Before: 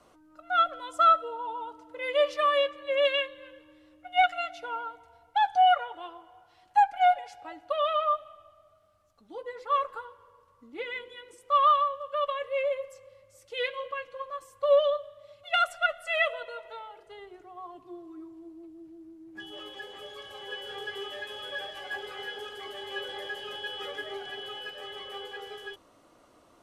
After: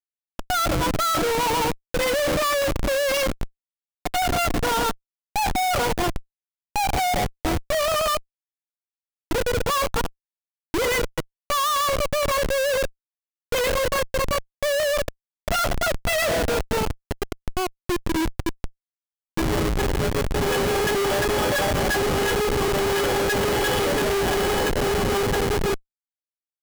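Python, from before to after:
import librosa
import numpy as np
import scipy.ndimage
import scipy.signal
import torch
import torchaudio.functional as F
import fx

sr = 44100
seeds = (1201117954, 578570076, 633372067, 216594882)

y = fx.peak_eq(x, sr, hz=260.0, db=5.5, octaves=2.1)
y = fx.schmitt(y, sr, flips_db=-37.0)
y = y * 10.0 ** (7.5 / 20.0)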